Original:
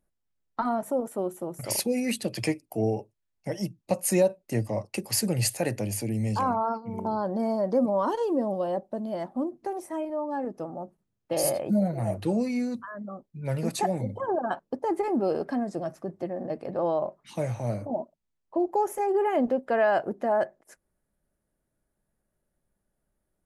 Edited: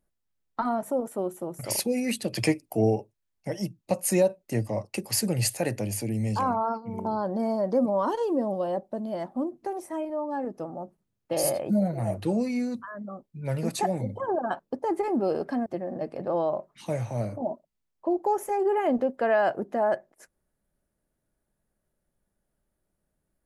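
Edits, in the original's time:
0:02.33–0:02.96: clip gain +3.5 dB
0:15.66–0:16.15: remove

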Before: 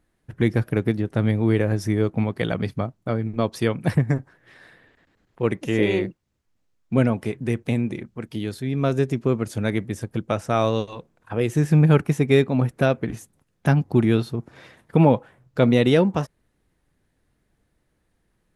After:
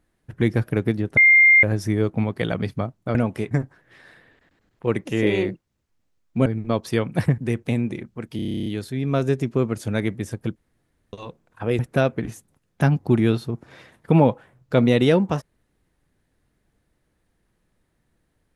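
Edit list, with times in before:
0:01.17–0:01.63: beep over 2,110 Hz −9.5 dBFS
0:03.15–0:04.07: swap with 0:07.02–0:07.38
0:08.36: stutter 0.03 s, 11 plays
0:10.26–0:10.83: fill with room tone
0:11.49–0:12.64: remove

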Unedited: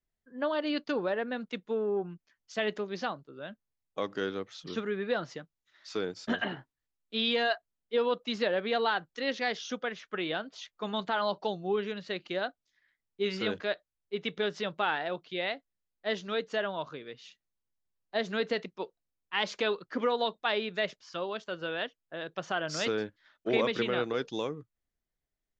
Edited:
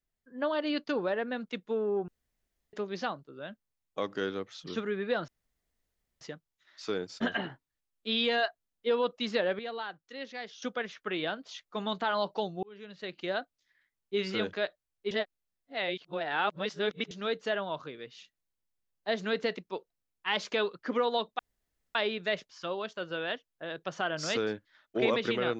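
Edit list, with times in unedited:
0:02.08–0:02.73: fill with room tone
0:05.28: splice in room tone 0.93 s
0:08.66–0:09.69: clip gain −9.5 dB
0:11.70–0:12.39: fade in
0:14.18–0:16.18: reverse
0:20.46: splice in room tone 0.56 s

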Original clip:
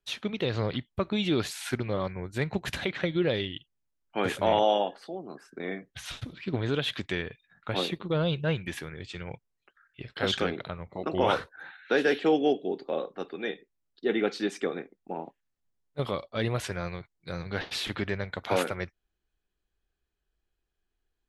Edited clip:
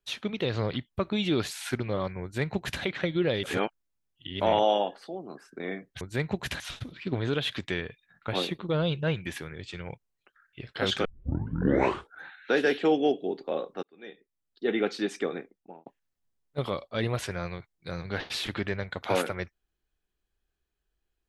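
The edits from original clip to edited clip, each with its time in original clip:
0:02.23–0:02.82: duplicate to 0:06.01
0:03.43–0:04.40: reverse
0:10.46: tape start 1.16 s
0:13.24–0:14.14: fade in
0:14.79–0:15.27: fade out

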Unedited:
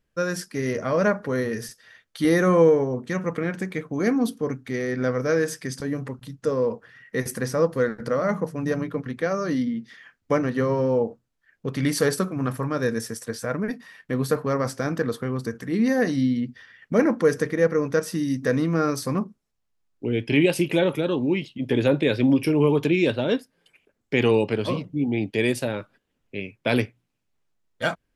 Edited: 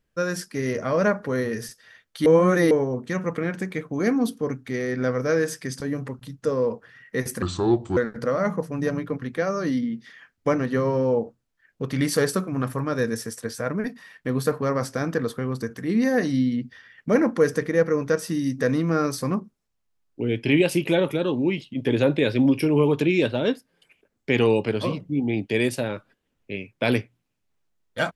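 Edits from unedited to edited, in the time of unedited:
0:02.26–0:02.71: reverse
0:07.42–0:07.81: play speed 71%

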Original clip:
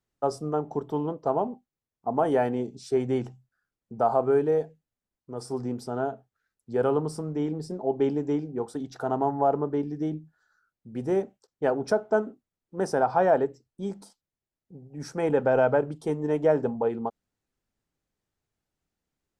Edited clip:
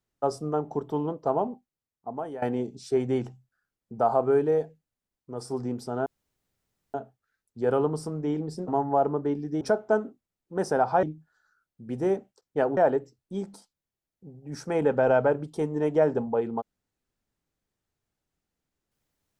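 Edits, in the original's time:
0:01.48–0:02.42: fade out, to −17.5 dB
0:06.06: splice in room tone 0.88 s
0:07.80–0:09.16: remove
0:11.83–0:13.25: move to 0:10.09

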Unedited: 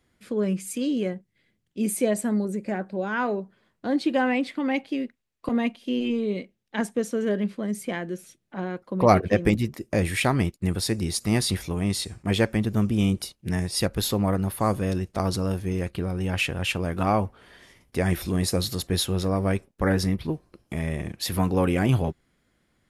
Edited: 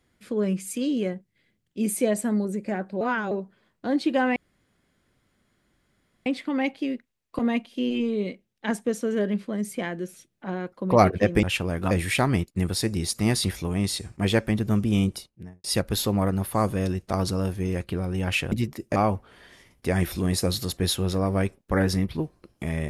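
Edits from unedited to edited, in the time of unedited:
0:03.01–0:03.31: reverse
0:04.36: splice in room tone 1.90 s
0:09.53–0:09.97: swap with 0:16.58–0:17.06
0:13.09–0:13.70: fade out and dull

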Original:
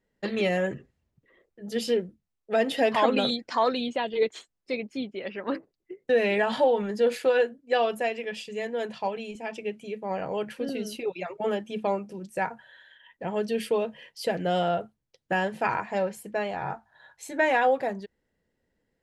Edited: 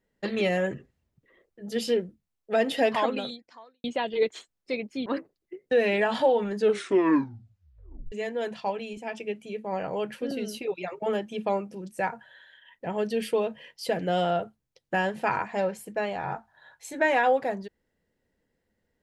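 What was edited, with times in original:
0:02.86–0:03.84: fade out quadratic
0:05.06–0:05.44: remove
0:06.92: tape stop 1.58 s

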